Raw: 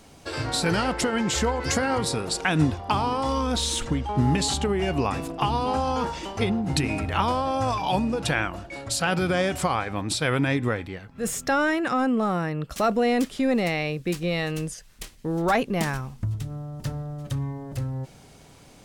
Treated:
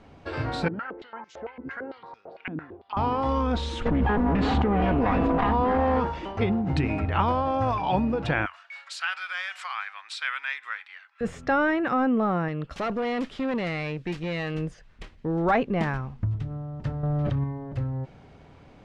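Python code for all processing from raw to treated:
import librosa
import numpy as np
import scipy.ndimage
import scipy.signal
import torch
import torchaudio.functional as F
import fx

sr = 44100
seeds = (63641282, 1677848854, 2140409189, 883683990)

y = fx.chain(x, sr, fx.air_absorb(metres=93.0),
    fx.filter_held_bandpass(hz=8.9, low_hz=250.0, high_hz=6200.0), at=(0.68, 2.97))
y = fx.chain(y, sr, fx.lower_of_two(delay_ms=4.1),
    fx.spacing_loss(db_at_10k=21),
    fx.env_flatten(amount_pct=100), at=(3.85, 6.0))
y = fx.chain(y, sr, fx.highpass(hz=1300.0, slope=24),
    fx.high_shelf(hz=4200.0, db=8.0), at=(8.46, 11.21))
y = fx.chain(y, sr, fx.high_shelf(hz=2200.0, db=10.0),
    fx.tube_stage(drive_db=24.0, bias=0.55), at=(12.48, 14.55))
y = fx.chain(y, sr, fx.lowpass(hz=5400.0, slope=12),
    fx.env_flatten(amount_pct=100), at=(17.03, 17.44))
y = scipy.signal.sosfilt(scipy.signal.butter(2, 2300.0, 'lowpass', fs=sr, output='sos'), y)
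y = fx.peak_eq(y, sr, hz=80.0, db=5.5, octaves=0.28)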